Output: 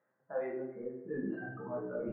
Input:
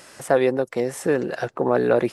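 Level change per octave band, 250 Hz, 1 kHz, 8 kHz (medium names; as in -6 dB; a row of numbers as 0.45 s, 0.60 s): -15.0 dB, -21.0 dB, under -40 dB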